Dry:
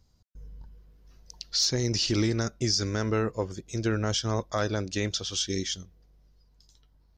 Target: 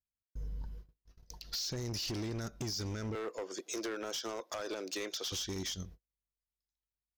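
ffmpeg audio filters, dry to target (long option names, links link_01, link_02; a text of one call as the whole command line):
ffmpeg -i in.wav -filter_complex "[0:a]agate=range=-42dB:threshold=-51dB:ratio=16:detection=peak,asettb=1/sr,asplit=3[link_01][link_02][link_03];[link_01]atrim=end=3.154[link_04];[link_02]atrim=start=3.15:end=5.32,asetpts=PTS-STARTPTS,afade=type=in:duration=0.004:curve=qsin,afade=type=out:start_time=2.166:duration=0.004:curve=qsin,highpass=frequency=340:width=0.5412,highpass=frequency=340:width=1.3066[link_05];[link_03]atrim=start=5.316[link_06];[link_04][link_05]acrossfade=duration=0.004:curve1=hsin:curve2=qsin[link_07];[link_07][link_06]acrossfade=duration=0.004:curve1=qsin:curve2=hsin,alimiter=limit=-23.5dB:level=0:latency=1:release=78,acompressor=threshold=-38dB:ratio=6,asoftclip=type=hard:threshold=-39dB,volume=5dB" out.wav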